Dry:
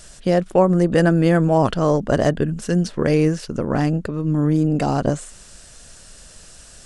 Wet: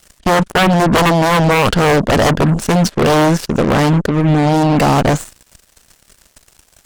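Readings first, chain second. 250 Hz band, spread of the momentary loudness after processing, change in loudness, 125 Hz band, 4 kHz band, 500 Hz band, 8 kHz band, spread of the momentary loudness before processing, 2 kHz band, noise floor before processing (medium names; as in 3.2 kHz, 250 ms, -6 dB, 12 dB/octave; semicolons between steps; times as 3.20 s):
+4.5 dB, 3 LU, +6.0 dB, +5.5 dB, +14.5 dB, +4.5 dB, +10.5 dB, 7 LU, +11.5 dB, -45 dBFS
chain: sine folder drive 14 dB, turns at -2.5 dBFS; Chebyshev shaper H 3 -24 dB, 5 -43 dB, 7 -18 dB, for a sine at -2 dBFS; trim -4.5 dB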